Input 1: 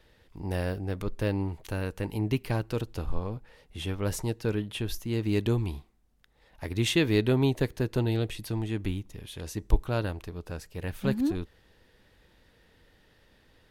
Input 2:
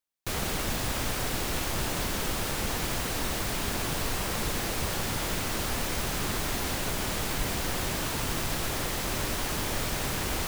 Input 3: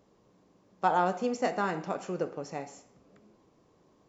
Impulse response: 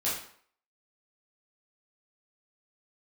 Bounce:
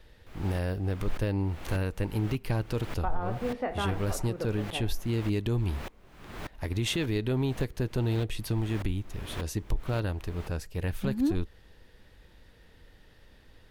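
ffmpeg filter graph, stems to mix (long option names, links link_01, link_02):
-filter_complex "[0:a]lowshelf=frequency=69:gain=9.5,volume=2dB[link_01];[1:a]acrossover=split=3300[link_02][link_03];[link_03]acompressor=threshold=-49dB:ratio=4:attack=1:release=60[link_04];[link_02][link_04]amix=inputs=2:normalize=0,aeval=exprs='val(0)*pow(10,-34*if(lt(mod(-1.7*n/s,1),2*abs(-1.7)/1000),1-mod(-1.7*n/s,1)/(2*abs(-1.7)/1000),(mod(-1.7*n/s,1)-2*abs(-1.7)/1000)/(1-2*abs(-1.7)/1000))/20)':channel_layout=same,volume=-3.5dB[link_05];[2:a]lowpass=frequency=2600:width=0.5412,lowpass=frequency=2600:width=1.3066,adelay=2200,volume=-1.5dB[link_06];[link_01][link_05][link_06]amix=inputs=3:normalize=0,alimiter=limit=-19dB:level=0:latency=1:release=192"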